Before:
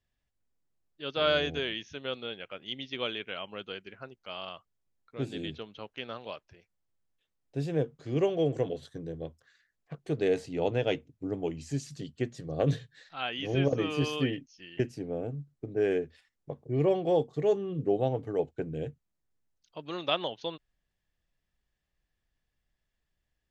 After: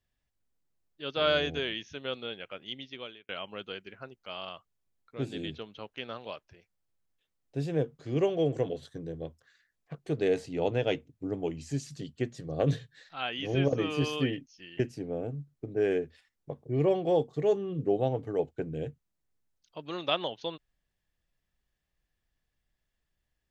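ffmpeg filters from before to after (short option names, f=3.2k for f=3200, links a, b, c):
-filter_complex "[0:a]asplit=2[a][b];[a]atrim=end=3.29,asetpts=PTS-STARTPTS,afade=t=out:st=2.58:d=0.71[c];[b]atrim=start=3.29,asetpts=PTS-STARTPTS,afade=t=in:d=0.004:c=hsin[d];[c][d]concat=n=2:v=0:a=1"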